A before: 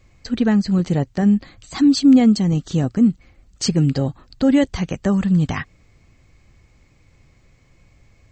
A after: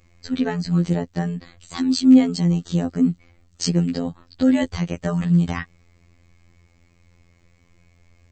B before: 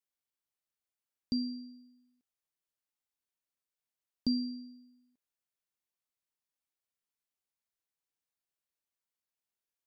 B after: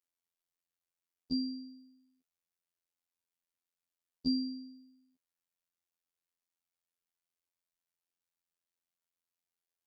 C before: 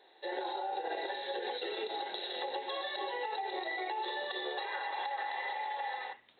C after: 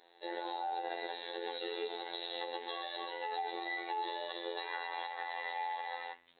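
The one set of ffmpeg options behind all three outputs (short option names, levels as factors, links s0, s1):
-af "afftfilt=real='hypot(re,im)*cos(PI*b)':imag='0':win_size=2048:overlap=0.75,volume=1.12"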